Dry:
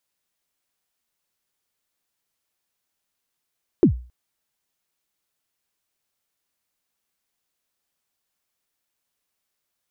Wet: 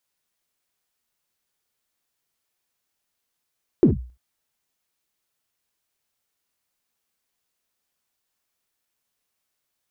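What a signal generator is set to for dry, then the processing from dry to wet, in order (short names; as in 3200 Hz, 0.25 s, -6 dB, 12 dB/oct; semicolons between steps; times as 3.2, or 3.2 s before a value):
kick drum length 0.27 s, from 410 Hz, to 61 Hz, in 99 ms, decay 0.38 s, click off, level -7 dB
non-linear reverb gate 90 ms flat, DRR 7.5 dB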